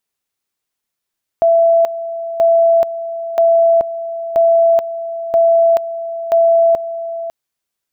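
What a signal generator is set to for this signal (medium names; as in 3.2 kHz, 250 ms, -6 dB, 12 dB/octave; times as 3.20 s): two-level tone 668 Hz -7.5 dBFS, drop 13 dB, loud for 0.43 s, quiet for 0.55 s, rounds 6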